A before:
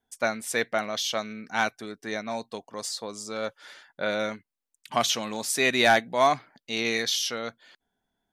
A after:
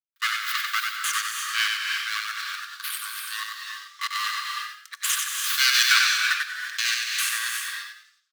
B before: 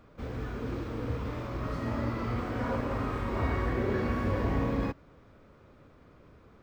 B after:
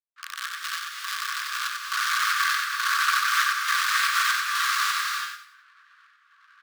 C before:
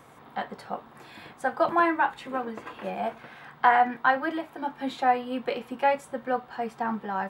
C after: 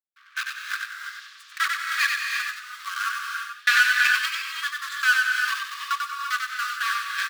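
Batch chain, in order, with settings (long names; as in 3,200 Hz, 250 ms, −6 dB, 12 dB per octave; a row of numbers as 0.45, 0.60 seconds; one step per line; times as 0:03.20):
gate on every frequency bin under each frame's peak −20 dB strong
full-wave rectification
gate pattern "..xxxxx.xx." 188 BPM −60 dB
in parallel at −4.5 dB: bit reduction 5 bits
on the sum: Chebyshev high-pass with heavy ripple 1,100 Hz, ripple 6 dB
on a send: echo with shifted repeats 93 ms, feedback 34%, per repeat +37 Hz, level −4 dB
on the sum: reverb whose tail is shaped and stops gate 370 ms rising, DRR 2.5 dB
loudness normalisation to −24 LKFS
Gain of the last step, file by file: +6.5, +16.0, +6.5 decibels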